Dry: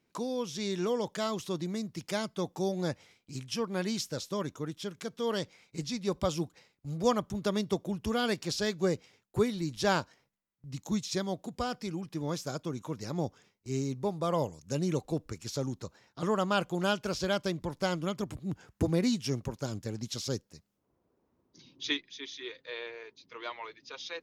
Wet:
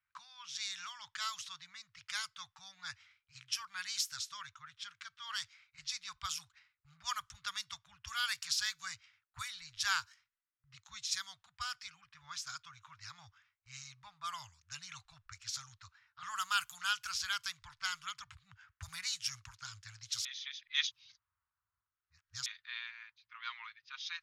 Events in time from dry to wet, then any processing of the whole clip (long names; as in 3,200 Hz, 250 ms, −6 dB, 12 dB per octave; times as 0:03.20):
0:16.27–0:16.74: high-shelf EQ 9,500 Hz +12 dB
0:20.25–0:22.46: reverse
whole clip: elliptic band-stop filter 100–1,300 Hz, stop band 60 dB; low-pass that shuts in the quiet parts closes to 1,500 Hz, open at −35.5 dBFS; bass and treble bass −13 dB, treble +3 dB